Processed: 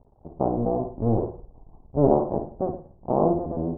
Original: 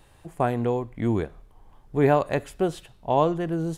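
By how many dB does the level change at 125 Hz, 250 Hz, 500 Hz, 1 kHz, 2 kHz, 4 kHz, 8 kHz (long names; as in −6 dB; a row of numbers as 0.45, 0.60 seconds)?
0.0 dB, +1.0 dB, +0.5 dB, −2.0 dB, below −25 dB, below −40 dB, can't be measured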